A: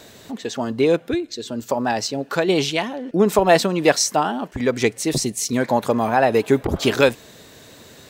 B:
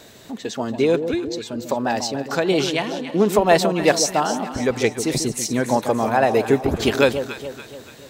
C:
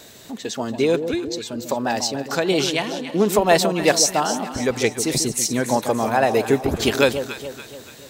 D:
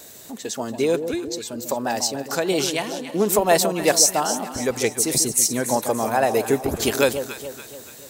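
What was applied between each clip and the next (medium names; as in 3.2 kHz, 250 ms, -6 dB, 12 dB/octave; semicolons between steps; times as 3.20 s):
echo whose repeats swap between lows and highs 143 ms, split 870 Hz, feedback 67%, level -8 dB; trim -1 dB
treble shelf 3.9 kHz +6.5 dB; trim -1 dB
FFT filter 170 Hz 0 dB, 590 Hz +3 dB, 3.6 kHz 0 dB, 10 kHz +11 dB; trim -4 dB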